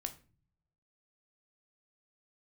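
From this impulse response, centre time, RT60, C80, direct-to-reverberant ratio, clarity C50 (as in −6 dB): 7 ms, 0.40 s, 20.0 dB, 6.5 dB, 15.0 dB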